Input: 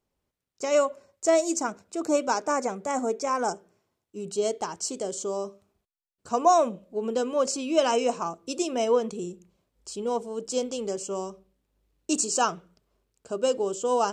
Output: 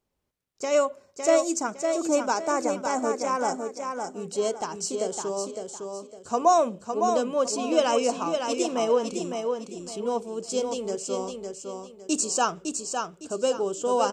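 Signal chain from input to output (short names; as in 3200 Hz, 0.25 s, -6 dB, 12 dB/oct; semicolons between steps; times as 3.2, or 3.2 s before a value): feedback echo 0.558 s, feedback 30%, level -5.5 dB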